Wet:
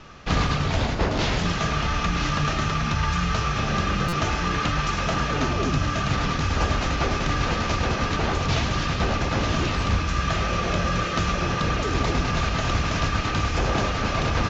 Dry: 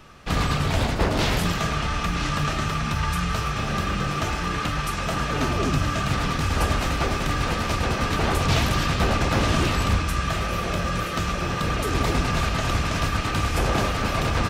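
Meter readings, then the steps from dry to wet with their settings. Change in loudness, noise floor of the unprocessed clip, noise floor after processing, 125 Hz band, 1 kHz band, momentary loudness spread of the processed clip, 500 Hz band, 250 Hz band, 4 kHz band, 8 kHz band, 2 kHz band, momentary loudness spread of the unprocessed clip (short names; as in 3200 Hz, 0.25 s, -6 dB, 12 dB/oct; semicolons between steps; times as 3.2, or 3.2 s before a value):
0.0 dB, -27 dBFS, -27 dBFS, 0.0 dB, 0.0 dB, 1 LU, 0.0 dB, 0.0 dB, 0.0 dB, -1.5 dB, 0.0 dB, 4 LU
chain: steep low-pass 7100 Hz 96 dB/oct; vocal rider 0.5 s; stuck buffer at 4.08, samples 256, times 7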